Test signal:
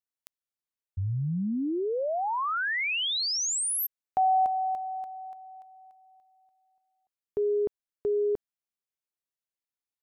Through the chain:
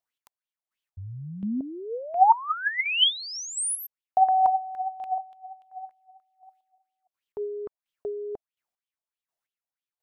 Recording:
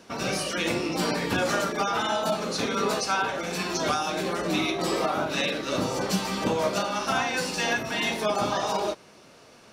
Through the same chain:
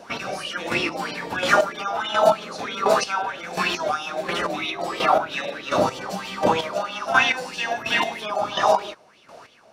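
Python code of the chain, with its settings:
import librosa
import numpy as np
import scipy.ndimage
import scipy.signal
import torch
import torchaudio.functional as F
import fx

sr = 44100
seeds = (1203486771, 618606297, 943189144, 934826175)

y = fx.chopper(x, sr, hz=1.4, depth_pct=65, duty_pct=25)
y = fx.bell_lfo(y, sr, hz=3.1, low_hz=640.0, high_hz=3300.0, db=17)
y = y * 10.0 ** (1.0 / 20.0)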